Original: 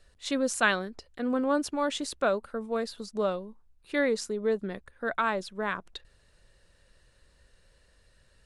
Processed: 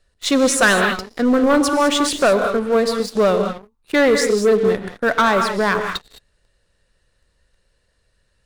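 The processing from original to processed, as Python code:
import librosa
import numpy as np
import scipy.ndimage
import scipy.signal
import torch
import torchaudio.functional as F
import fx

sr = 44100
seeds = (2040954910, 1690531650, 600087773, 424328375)

y = fx.rev_gated(x, sr, seeds[0], gate_ms=230, shape='rising', drr_db=7.0)
y = fx.leveller(y, sr, passes=3)
y = F.gain(torch.from_numpy(y), 3.0).numpy()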